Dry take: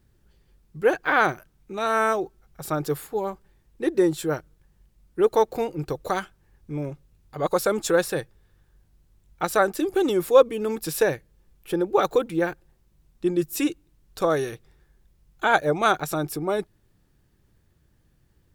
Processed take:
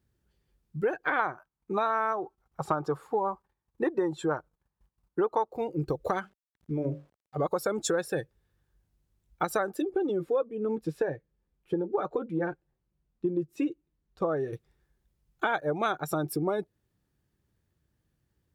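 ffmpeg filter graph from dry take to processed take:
-filter_complex "[0:a]asettb=1/sr,asplit=3[a][b][c];[a]atrim=end=1.194[d];[b]atrim=start=1.19:end=5.48,asetpts=PTS-STARTPTS,afade=t=in:d=0.004:c=qsin,afade=t=out:st=4.286:d=0.004:c=qsin,acrossover=split=9200[e][f];[f]acompressor=threshold=-59dB:ratio=4:attack=1:release=60[g];[e][g]amix=inputs=2:normalize=0,agate=range=-13dB:threshold=-57dB:ratio=16:release=100:detection=peak,equalizer=f=1k:w=1.3:g=11.5[h];[c]atrim=start=5.476[i];[d][h]acrossfade=d=0.004:c1=hsin:c2=qsin[j];[j][i]acrossfade=d=0.004:c1=qsin:c2=hsin,asettb=1/sr,asplit=3[k][l][m];[k]atrim=end=6.204[n];[l]atrim=start=6.2:end=7.37,asetpts=PTS-STARTPTS,afade=t=in:d=0.004:c=qsin,afade=t=out:st=1.166:d=0.004:c=qsin,bandreject=f=48.8:t=h:w=4,bandreject=f=97.6:t=h:w=4,bandreject=f=146.4:t=h:w=4,bandreject=f=195.2:t=h:w=4,bandreject=f=244:t=h:w=4,bandreject=f=292.8:t=h:w=4,bandreject=f=341.6:t=h:w=4,bandreject=f=390.4:t=h:w=4,bandreject=f=439.2:t=h:w=4,bandreject=f=488:t=h:w=4,bandreject=f=536.8:t=h:w=4,bandreject=f=585.6:t=h:w=4,bandreject=f=634.4:t=h:w=4,bandreject=f=683.2:t=h:w=4,bandreject=f=732:t=h:w=4,bandreject=f=780.8:t=h:w=4,bandreject=f=829.6:t=h:w=4,bandreject=f=878.4:t=h:w=4,bandreject=f=927.2:t=h:w=4,aeval=exprs='val(0)*gte(abs(val(0)),0.00282)':c=same,highshelf=f=7.5k:g=-11.5[o];[m]atrim=start=7.366[p];[n][o]acrossfade=d=0.004:c1=hsin:c2=qsin[q];[q][p]acrossfade=d=0.004:c1=qsin:c2=hsin,asettb=1/sr,asplit=3[r][s][t];[r]atrim=end=9.824[u];[s]atrim=start=9.82:end=14.53,asetpts=PTS-STARTPTS,afade=t=in:d=0.004:c=qsin,afade=t=out:st=4.706:d=0.004:c=qsin,aemphasis=mode=reproduction:type=75fm,flanger=delay=3.8:depth=3.7:regen=-53:speed=1.2:shape=triangular[v];[t]atrim=start=14.526[w];[u][v]acrossfade=d=0.004:c1=hsin:c2=qsin[x];[x][w]acrossfade=d=0.004:c1=qsin:c2=hsin,afftdn=nr=14:nf=-34,highpass=50,acompressor=threshold=-29dB:ratio=6,volume=3.5dB"

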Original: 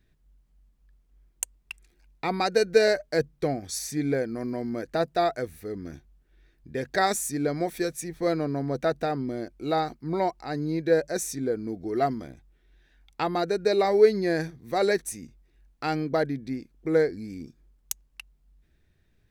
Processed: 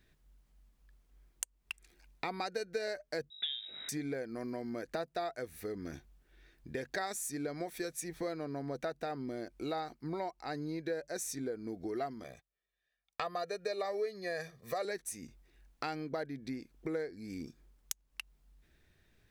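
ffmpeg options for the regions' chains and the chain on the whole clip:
-filter_complex "[0:a]asettb=1/sr,asplit=3[a][b][c];[a]atrim=end=3.304[d];[b]atrim=start=3.3:end=3.89,asetpts=PTS-STARTPTS,afade=t=in:d=0.004:c=qsin,afade=t=out:st=0.586:d=0.004:c=qsin,aeval=exprs='val(0)+0.00447*(sin(2*PI*50*n/s)+sin(2*PI*2*50*n/s)/2+sin(2*PI*3*50*n/s)/3+sin(2*PI*4*50*n/s)/4+sin(2*PI*5*50*n/s)/5)':c=same,lowpass=f=3.3k:t=q:w=0.5098,lowpass=f=3.3k:t=q:w=0.6013,lowpass=f=3.3k:t=q:w=0.9,lowpass=f=3.3k:t=q:w=2.563,afreqshift=-3900[e];[c]atrim=start=3.886[f];[d][e]acrossfade=d=0.004:c1=hsin:c2=qsin[g];[g][f]acrossfade=d=0.004:c1=qsin:c2=hsin,asettb=1/sr,asplit=3[h][i][j];[h]atrim=end=12.244[k];[i]atrim=start=12.24:end=14.85,asetpts=PTS-STARTPTS,afade=t=in:d=0.004:c=qsin,afade=t=out:st=2.606:d=0.004:c=qsin,agate=range=-24dB:threshold=-53dB:ratio=16:release=100:detection=peak,highpass=f=230:p=1,aecho=1:1:1.7:0.93,atrim=end_sample=115101[l];[j]atrim=start=14.846[m];[k][l]acrossfade=d=0.004:c1=hsin:c2=qsin[n];[n][m]acrossfade=d=0.004:c1=qsin:c2=hsin,lowshelf=f=340:g=-7.5,acompressor=threshold=-41dB:ratio=4,volume=3.5dB"

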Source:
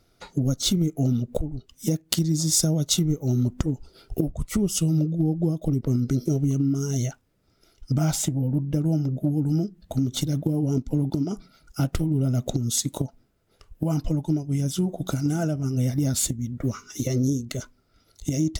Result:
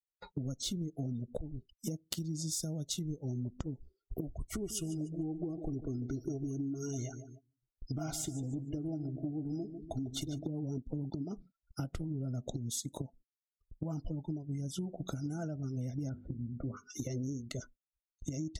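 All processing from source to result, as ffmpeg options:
-filter_complex "[0:a]asettb=1/sr,asplit=3[a][b][c];[a]atrim=end=4.294[d];[b]atrim=start=4.29:end=10.47,asetpts=PTS-STARTPTS,afade=t=in:d=0.004:c=qsin,afade=t=out:st=6.176:d=0.004:c=qsin,aecho=1:1:2.8:0.53,atrim=end_sample=272538,aecho=1:1:147|294|441|588|735:0.224|0.103|0.0474|0.0218|0.01,atrim=end_sample=272538[e];[c]atrim=start=10.466[f];[d][e]acrossfade=d=0.004:c1=hsin:c2=qsin[g];[g][f]acrossfade=d=0.004:c1=qsin:c2=hsin,asettb=1/sr,asplit=3[h][i][j];[h]atrim=end=16.094[k];[i]atrim=start=16.09:end=16.77,asetpts=PTS-STARTPTS,afade=t=in:d=0.004:c=qsin,afade=t=out:st=0.676:d=0.004:c=qsin,lowpass=f=1.7k:w=0.5412,lowpass=f=1.7k:w=1.3066,bandreject=f=50:t=h:w=6,bandreject=f=100:t=h:w=6,bandreject=f=150:t=h:w=6,bandreject=f=200:t=h:w=6,bandreject=f=250:t=h:w=6,bandreject=f=300:t=h:w=6,bandreject=f=350:t=h:w=6,bandreject=f=400:t=h:w=6,bandreject=f=450:t=h:w=6,bandreject=f=500:t=h:w=6[l];[j]atrim=start=16.766[m];[k][l]acrossfade=d=0.004:c1=hsin:c2=qsin[n];[n][m]acrossfade=d=0.004:c1=qsin:c2=hsin,afftdn=nr=28:nf=-42,agate=range=-17dB:threshold=-47dB:ratio=16:detection=peak,acompressor=threshold=-29dB:ratio=4,volume=-6.5dB"

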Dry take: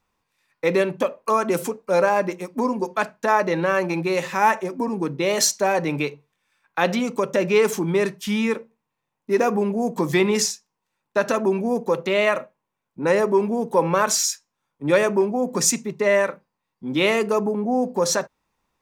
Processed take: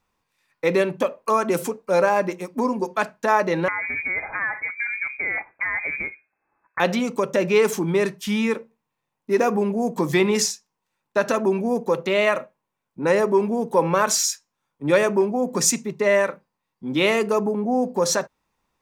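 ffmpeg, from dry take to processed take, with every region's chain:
-filter_complex "[0:a]asettb=1/sr,asplit=3[a][b][c];[a]atrim=end=3.684[d];[b]atrim=start=3.68:end=6.8,asetpts=PTS-STARTPTS,afade=t=in:d=0.004:c=qsin,afade=t=out:st=3.116:d=0.004:c=qsin,equalizer=f=160:w=1.1:g=-6,acompressor=threshold=-21dB:ratio=6:attack=3.2:release=140:knee=1:detection=peak,lowpass=f=2.2k:t=q:w=0.5098,lowpass=f=2.2k:t=q:w=0.6013,lowpass=f=2.2k:t=q:w=0.9,lowpass=f=2.2k:t=q:w=2.563,afreqshift=-2600[e];[c]atrim=start=6.796[f];[d][e]acrossfade=d=0.004:c1=hsin:c2=qsin[g];[g][f]acrossfade=d=0.004:c1=qsin:c2=hsin"

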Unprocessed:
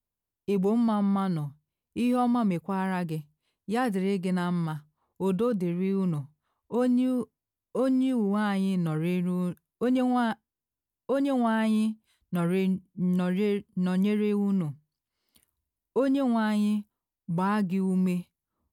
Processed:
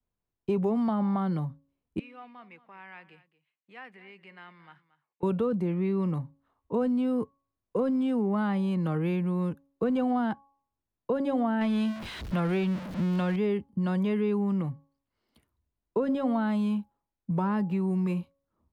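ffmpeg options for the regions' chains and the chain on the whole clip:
-filter_complex "[0:a]asettb=1/sr,asplit=3[a][b][c];[a]atrim=end=1.994[d];[b]atrim=start=1.99:end=5.23,asetpts=PTS-STARTPTS,afade=t=in:d=0.004:c=qsin,afade=t=out:st=3.236:d=0.004:c=qsin,acompressor=threshold=-32dB:ratio=2:attack=3.2:release=140:knee=1:detection=peak,bandpass=f=2.3k:t=q:w=2.7,aecho=1:1:228:0.141,atrim=end_sample=142884[e];[c]atrim=start=5.226[f];[d][e]acrossfade=d=0.004:c1=hsin:c2=qsin[g];[g][f]acrossfade=d=0.004:c1=qsin:c2=hsin,asettb=1/sr,asplit=3[h][i][j];[h]atrim=end=11.614[k];[i]atrim=start=11.61:end=13.36,asetpts=PTS-STARTPTS,afade=t=in:d=0.004:c=qsin,afade=t=out:st=1.746:d=0.004:c=qsin,aeval=exprs='val(0)+0.5*0.0178*sgn(val(0))':c=same,acrossover=split=4900[l][m];[m]acompressor=threshold=-57dB:ratio=4:attack=1:release=60[n];[l][n]amix=inputs=2:normalize=0,highshelf=f=2.4k:g=12[o];[j]atrim=start=13.356[p];[k][o]acrossfade=d=0.004:c1=hsin:c2=qsin[q];[q][p]acrossfade=d=0.004:c1=qsin:c2=hsin,bandreject=f=277.1:t=h:w=4,bandreject=f=554.2:t=h:w=4,bandreject=f=831.3:t=h:w=4,bandreject=f=1.1084k:t=h:w=4,acrossover=split=170|460[r][s][t];[r]acompressor=threshold=-39dB:ratio=4[u];[s]acompressor=threshold=-37dB:ratio=4[v];[t]acompressor=threshold=-34dB:ratio=4[w];[u][v][w]amix=inputs=3:normalize=0,lowpass=f=1.3k:p=1,volume=5dB"

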